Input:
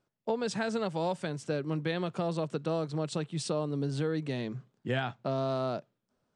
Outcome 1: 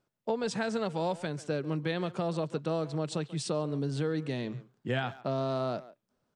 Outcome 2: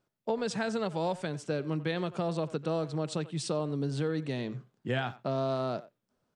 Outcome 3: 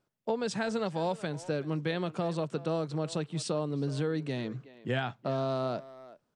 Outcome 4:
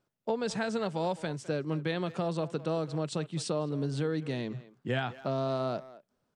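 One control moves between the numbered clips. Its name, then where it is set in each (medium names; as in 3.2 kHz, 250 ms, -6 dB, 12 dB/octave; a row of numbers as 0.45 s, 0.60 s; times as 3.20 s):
speakerphone echo, time: 140 ms, 90 ms, 370 ms, 210 ms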